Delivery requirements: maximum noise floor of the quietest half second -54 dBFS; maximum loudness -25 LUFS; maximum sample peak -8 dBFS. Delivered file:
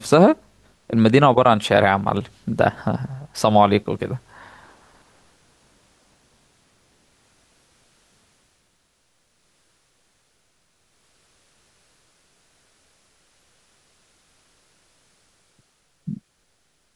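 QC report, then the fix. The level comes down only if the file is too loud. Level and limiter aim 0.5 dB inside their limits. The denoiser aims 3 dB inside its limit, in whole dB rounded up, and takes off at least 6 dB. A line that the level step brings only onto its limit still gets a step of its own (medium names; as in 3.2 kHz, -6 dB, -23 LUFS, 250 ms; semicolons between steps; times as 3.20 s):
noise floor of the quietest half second -66 dBFS: pass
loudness -18.5 LUFS: fail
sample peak -2.5 dBFS: fail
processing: trim -7 dB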